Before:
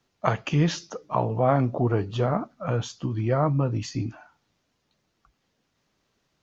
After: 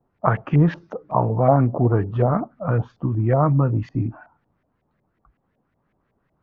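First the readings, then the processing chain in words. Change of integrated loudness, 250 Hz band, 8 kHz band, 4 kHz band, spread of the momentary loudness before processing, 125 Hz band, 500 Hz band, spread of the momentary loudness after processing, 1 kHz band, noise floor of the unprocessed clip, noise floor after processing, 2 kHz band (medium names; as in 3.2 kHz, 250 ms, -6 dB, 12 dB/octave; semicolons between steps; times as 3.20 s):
+5.0 dB, +5.0 dB, no reading, under -10 dB, 8 LU, +6.0 dB, +4.0 dB, 8 LU, +4.5 dB, -75 dBFS, -71 dBFS, +1.5 dB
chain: bass shelf 400 Hz +9 dB; LFO low-pass saw up 5.4 Hz 660–2100 Hz; trim -2 dB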